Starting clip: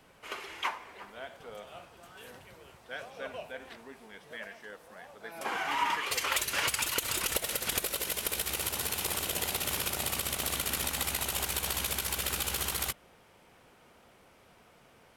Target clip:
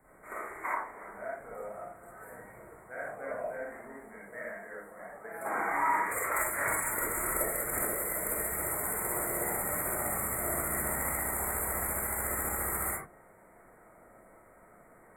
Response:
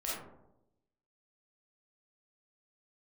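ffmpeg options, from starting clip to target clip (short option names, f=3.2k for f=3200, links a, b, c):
-filter_complex "[0:a]asuperstop=centerf=4100:order=20:qfactor=0.79[a];[1:a]atrim=start_sample=2205,afade=t=out:st=0.2:d=0.01,atrim=end_sample=9261[b];[a][b]afir=irnorm=-1:irlink=0"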